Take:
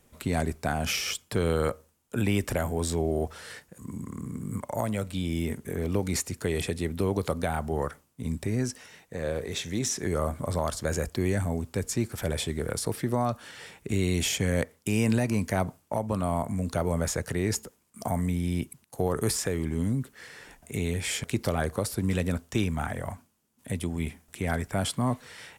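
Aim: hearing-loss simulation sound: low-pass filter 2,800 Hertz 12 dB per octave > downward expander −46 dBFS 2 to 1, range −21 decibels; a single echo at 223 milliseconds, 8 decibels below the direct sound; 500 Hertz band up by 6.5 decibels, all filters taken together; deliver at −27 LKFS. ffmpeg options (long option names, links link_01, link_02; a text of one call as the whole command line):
ffmpeg -i in.wav -af "lowpass=2800,equalizer=frequency=500:width_type=o:gain=8,aecho=1:1:223:0.398,agate=range=-21dB:threshold=-46dB:ratio=2,volume=-0.5dB" out.wav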